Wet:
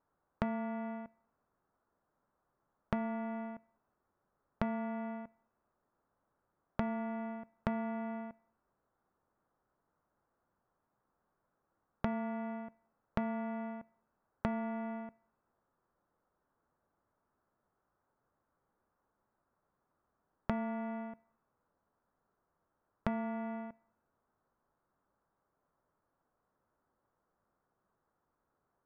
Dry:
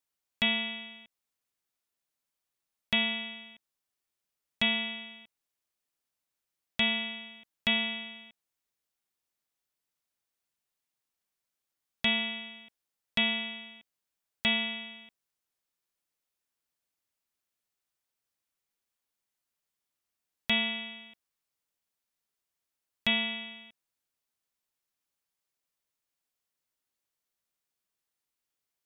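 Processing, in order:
Butterworth low-pass 1,400 Hz 36 dB per octave
downward compressor 6 to 1, threshold −50 dBFS, peak gain reduction 17.5 dB
on a send: convolution reverb RT60 1.0 s, pre-delay 3 ms, DRR 19 dB
on the sum: level +16 dB

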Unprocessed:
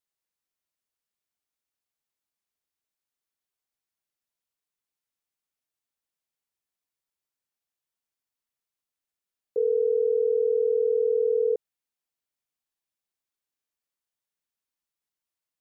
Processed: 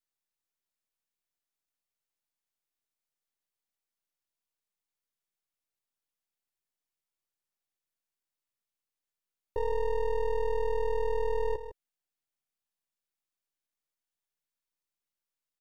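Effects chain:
gain on one half-wave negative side −12 dB
dynamic equaliser 470 Hz, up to −6 dB, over −39 dBFS, Q 5.3
on a send: single-tap delay 155 ms −11.5 dB

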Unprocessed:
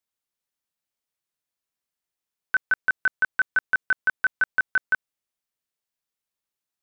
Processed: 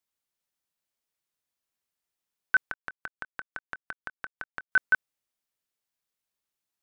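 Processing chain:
0:02.58–0:04.72: gate with flip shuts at −21 dBFS, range −25 dB

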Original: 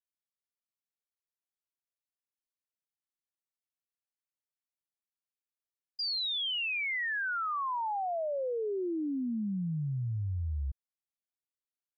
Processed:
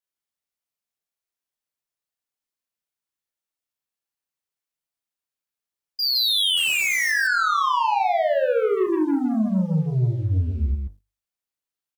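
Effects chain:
0:07.84–0:08.87: low-shelf EQ 150 Hz +11.5 dB
mains-hum notches 50/100/150/200/250/300/350/400 Hz
leveller curve on the samples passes 2
0:06.57–0:07.11: bit-depth reduction 6 bits, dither none
on a send: loudspeakers that aren't time-aligned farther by 11 metres −2 dB, 55 metres −3 dB
on the sum: level +5.5 dB

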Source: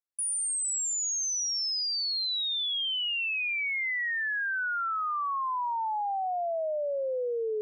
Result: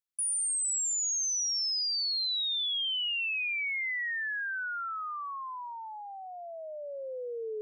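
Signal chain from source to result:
parametric band 760 Hz −12.5 dB 1.4 octaves

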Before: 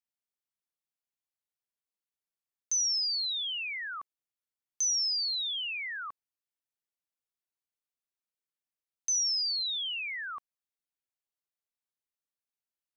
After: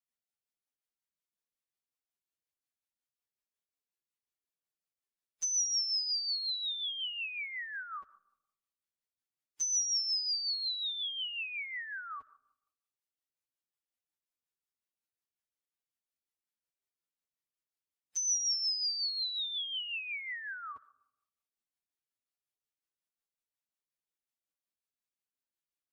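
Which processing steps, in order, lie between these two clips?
phase-vocoder stretch with locked phases 2×
comb and all-pass reverb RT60 0.95 s, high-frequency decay 0.35×, pre-delay 20 ms, DRR 17.5 dB
rotating-speaker cabinet horn 5.5 Hz

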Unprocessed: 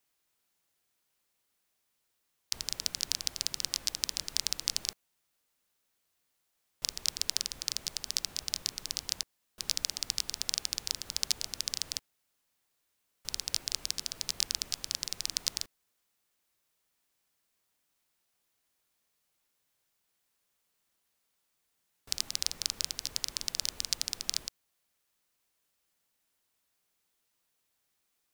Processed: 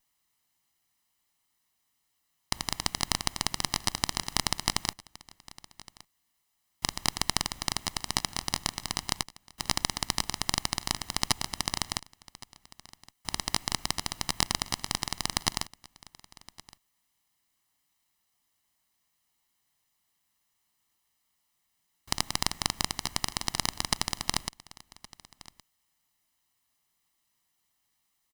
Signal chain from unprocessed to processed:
lower of the sound and its delayed copy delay 1 ms
single-tap delay 1,117 ms −21 dB
level +3.5 dB

